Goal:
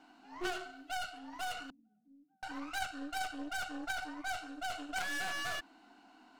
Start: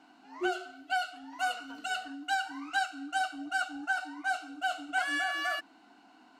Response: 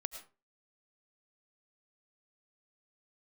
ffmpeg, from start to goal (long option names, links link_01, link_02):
-filter_complex "[0:a]asettb=1/sr,asplit=3[link_01][link_02][link_03];[link_01]atrim=end=1.704[link_04];[link_02]atrim=start=1.7:end=2.43,asetpts=PTS-STARTPTS,afade=type=in:duration=0.004:curve=qsin,afade=type=out:start_time=0.726:duration=0.004:curve=qsin,asuperpass=centerf=190:order=4:qfactor=3.3[link_05];[link_03]atrim=start=2.426[link_06];[link_04][link_05]acrossfade=duration=0.004:curve1=hsin:curve2=qsin[link_07];[link_07][link_06]acrossfade=duration=0.004:curve1=qsin:curve2=hsin,aeval=exprs='clip(val(0),-1,0.0188)':channel_layout=same,aeval=exprs='0.106*(cos(1*acos(clip(val(0)/0.106,-1,1)))-cos(1*PI/2))+0.0211*(cos(6*acos(clip(val(0)/0.106,-1,1)))-cos(6*PI/2))':channel_layout=same,volume=-2dB"